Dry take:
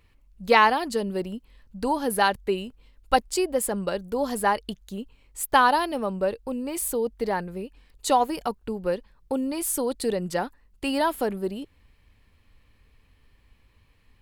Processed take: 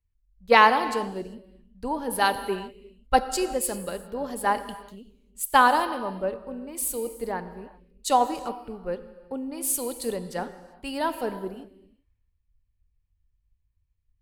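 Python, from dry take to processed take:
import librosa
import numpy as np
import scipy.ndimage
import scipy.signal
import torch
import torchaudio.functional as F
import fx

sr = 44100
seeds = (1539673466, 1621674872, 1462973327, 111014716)

y = fx.rev_gated(x, sr, seeds[0], gate_ms=420, shape='flat', drr_db=8.5)
y = fx.band_widen(y, sr, depth_pct=70)
y = y * librosa.db_to_amplitude(-4.0)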